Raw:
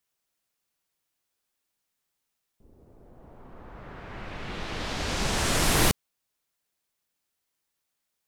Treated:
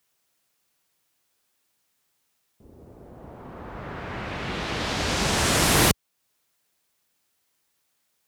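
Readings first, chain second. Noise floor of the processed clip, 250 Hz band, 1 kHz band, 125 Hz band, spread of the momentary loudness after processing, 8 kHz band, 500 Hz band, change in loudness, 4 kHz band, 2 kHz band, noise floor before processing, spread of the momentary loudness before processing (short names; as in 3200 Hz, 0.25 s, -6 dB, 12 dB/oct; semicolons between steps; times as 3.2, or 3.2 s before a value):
-73 dBFS, +4.5 dB, +4.5 dB, +4.0 dB, 20 LU, +4.0 dB, +4.5 dB, +3.0 dB, +4.5 dB, +4.5 dB, -82 dBFS, 21 LU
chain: HPF 59 Hz; in parallel at -1 dB: compressor, threshold -39 dBFS, peak gain reduction 19 dB; on the sum: gain +3 dB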